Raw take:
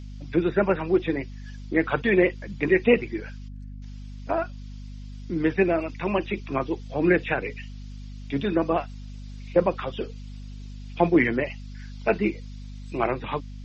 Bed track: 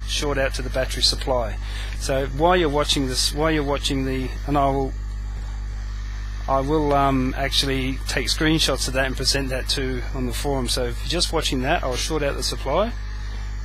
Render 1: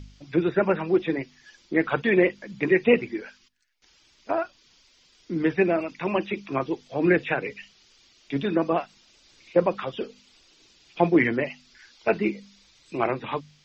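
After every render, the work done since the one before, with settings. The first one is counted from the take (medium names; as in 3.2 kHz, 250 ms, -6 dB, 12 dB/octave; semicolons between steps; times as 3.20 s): de-hum 50 Hz, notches 5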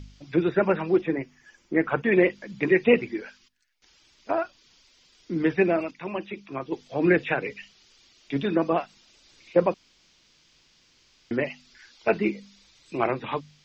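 1.01–2.12 s: peaking EQ 4 kHz -13.5 dB 0.8 oct; 5.91–6.72 s: gain -6.5 dB; 9.74–11.31 s: room tone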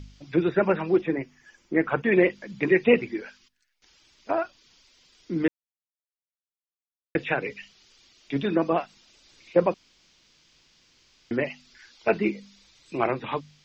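5.48–7.15 s: mute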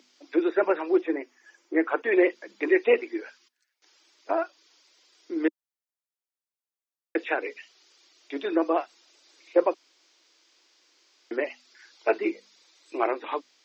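elliptic high-pass 310 Hz, stop band 60 dB; peaking EQ 2.9 kHz -3.5 dB 0.76 oct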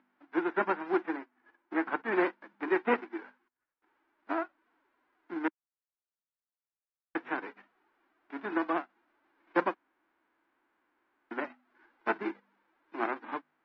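formants flattened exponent 0.3; four-pole ladder low-pass 1.9 kHz, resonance 30%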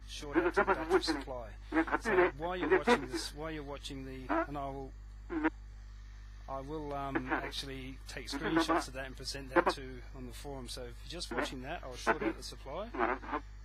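add bed track -20.5 dB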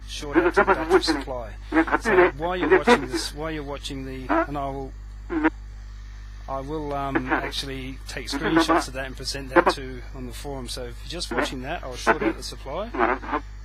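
trim +11 dB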